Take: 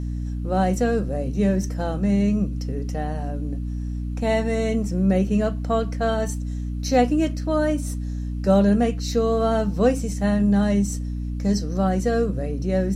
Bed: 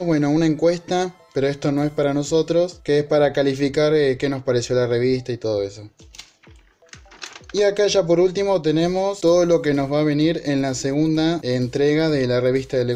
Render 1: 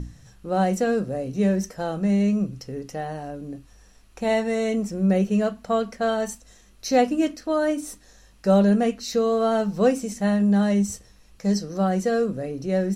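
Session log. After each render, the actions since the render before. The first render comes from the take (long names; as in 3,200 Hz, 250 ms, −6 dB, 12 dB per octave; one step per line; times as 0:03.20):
mains-hum notches 60/120/180/240/300 Hz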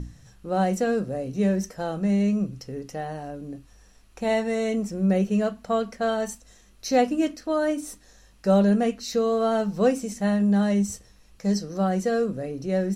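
level −1.5 dB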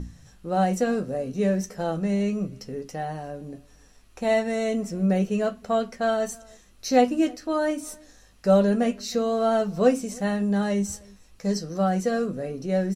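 double-tracking delay 12 ms −8 dB
slap from a distant wall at 54 metres, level −26 dB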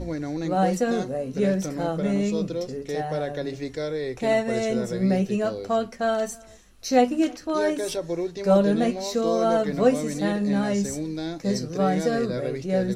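mix in bed −12 dB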